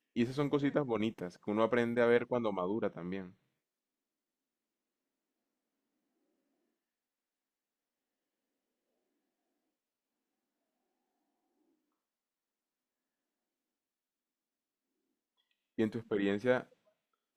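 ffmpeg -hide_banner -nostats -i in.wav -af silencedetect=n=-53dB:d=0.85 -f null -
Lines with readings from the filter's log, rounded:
silence_start: 3.31
silence_end: 15.78 | silence_duration: 12.48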